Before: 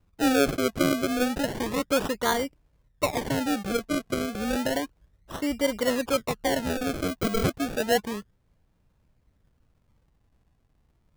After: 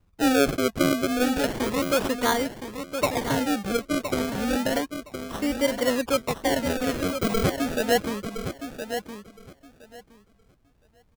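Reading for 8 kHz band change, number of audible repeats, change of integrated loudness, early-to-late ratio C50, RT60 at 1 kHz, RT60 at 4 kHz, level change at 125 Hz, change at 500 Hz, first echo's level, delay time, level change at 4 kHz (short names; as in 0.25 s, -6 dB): +2.0 dB, 2, +1.5 dB, none, none, none, +2.0 dB, +2.0 dB, -8.5 dB, 1.016 s, +2.0 dB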